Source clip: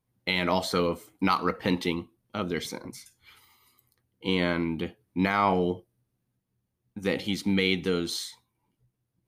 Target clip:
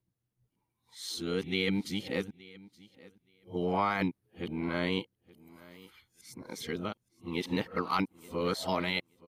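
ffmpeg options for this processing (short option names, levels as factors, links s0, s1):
-filter_complex "[0:a]areverse,asplit=2[s0][s1];[s1]aecho=0:1:873|1746:0.0841|0.0135[s2];[s0][s2]amix=inputs=2:normalize=0,volume=0.531"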